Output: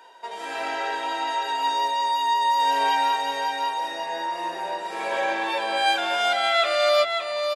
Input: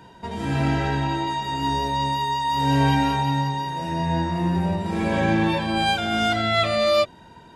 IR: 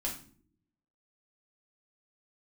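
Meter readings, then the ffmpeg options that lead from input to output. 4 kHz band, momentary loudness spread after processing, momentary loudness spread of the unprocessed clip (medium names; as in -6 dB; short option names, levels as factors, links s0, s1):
+1.0 dB, 9 LU, 6 LU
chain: -filter_complex "[0:a]highpass=f=490:w=0.5412,highpass=f=490:w=1.3066,asplit=2[s0][s1];[s1]aecho=0:1:562:0.531[s2];[s0][s2]amix=inputs=2:normalize=0"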